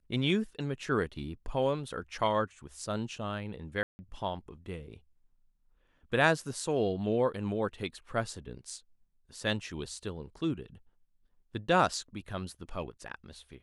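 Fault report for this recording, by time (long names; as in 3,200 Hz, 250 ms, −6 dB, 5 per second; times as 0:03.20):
0:03.83–0:03.99: drop-out 160 ms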